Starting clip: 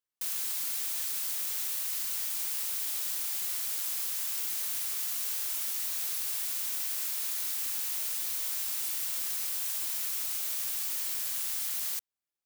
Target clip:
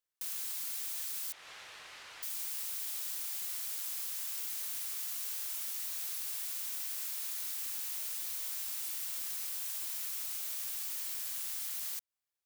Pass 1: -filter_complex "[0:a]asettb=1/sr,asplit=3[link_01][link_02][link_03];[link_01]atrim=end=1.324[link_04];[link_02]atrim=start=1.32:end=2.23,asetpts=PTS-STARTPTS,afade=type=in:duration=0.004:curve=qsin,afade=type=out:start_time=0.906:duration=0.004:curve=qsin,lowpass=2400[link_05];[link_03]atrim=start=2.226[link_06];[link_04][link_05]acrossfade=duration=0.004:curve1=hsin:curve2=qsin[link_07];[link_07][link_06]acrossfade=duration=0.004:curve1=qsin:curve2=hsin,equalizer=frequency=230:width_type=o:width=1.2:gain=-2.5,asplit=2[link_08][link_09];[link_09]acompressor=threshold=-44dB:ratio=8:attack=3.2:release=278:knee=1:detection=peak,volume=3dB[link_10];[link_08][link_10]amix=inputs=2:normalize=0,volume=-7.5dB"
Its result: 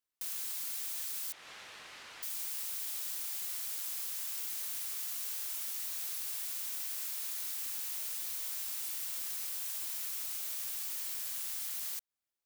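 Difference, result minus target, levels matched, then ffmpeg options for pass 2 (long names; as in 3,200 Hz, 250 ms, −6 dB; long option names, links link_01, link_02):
250 Hz band +5.0 dB
-filter_complex "[0:a]asettb=1/sr,asplit=3[link_01][link_02][link_03];[link_01]atrim=end=1.324[link_04];[link_02]atrim=start=1.32:end=2.23,asetpts=PTS-STARTPTS,afade=type=in:duration=0.004:curve=qsin,afade=type=out:start_time=0.906:duration=0.004:curve=qsin,lowpass=2400[link_05];[link_03]atrim=start=2.226[link_06];[link_04][link_05]acrossfade=duration=0.004:curve1=hsin:curve2=qsin[link_07];[link_07][link_06]acrossfade=duration=0.004:curve1=qsin:curve2=hsin,equalizer=frequency=230:width_type=o:width=1.2:gain=-9.5,asplit=2[link_08][link_09];[link_09]acompressor=threshold=-44dB:ratio=8:attack=3.2:release=278:knee=1:detection=peak,volume=3dB[link_10];[link_08][link_10]amix=inputs=2:normalize=0,volume=-7.5dB"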